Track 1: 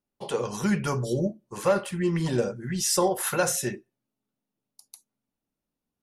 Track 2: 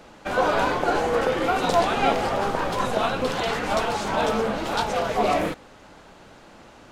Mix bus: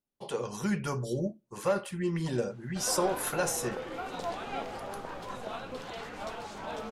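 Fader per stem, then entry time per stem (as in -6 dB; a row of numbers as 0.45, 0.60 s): -5.5, -15.5 dB; 0.00, 2.50 s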